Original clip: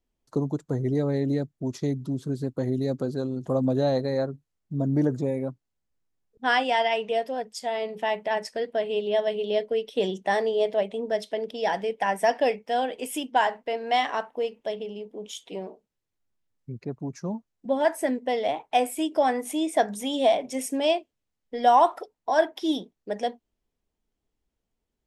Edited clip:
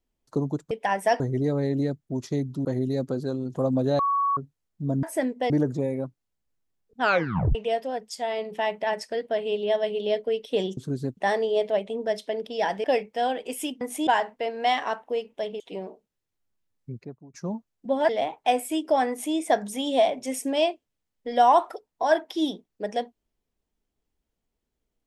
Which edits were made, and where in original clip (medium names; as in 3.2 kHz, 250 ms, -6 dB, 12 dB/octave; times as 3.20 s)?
2.16–2.56 s: move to 10.21 s
3.90–4.28 s: bleep 1.12 kHz -20.5 dBFS
6.45 s: tape stop 0.54 s
11.88–12.37 s: move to 0.71 s
14.87–15.40 s: delete
16.74–17.14 s: fade out quadratic, to -18 dB
17.89–18.36 s: move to 4.94 s
19.36–19.62 s: copy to 13.34 s